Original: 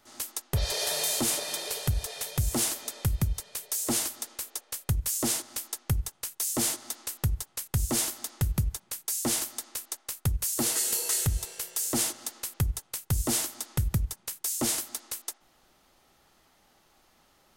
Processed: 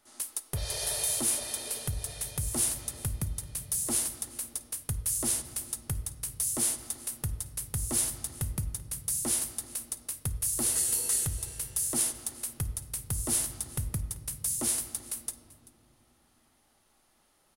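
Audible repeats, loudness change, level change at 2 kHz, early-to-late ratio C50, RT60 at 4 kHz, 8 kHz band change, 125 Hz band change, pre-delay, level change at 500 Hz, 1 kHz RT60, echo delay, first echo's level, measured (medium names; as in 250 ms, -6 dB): 1, -1.0 dB, -6.0 dB, 12.0 dB, 1.1 s, +0.5 dB, -6.0 dB, 3 ms, -6.0 dB, 2.0 s, 387 ms, -21.0 dB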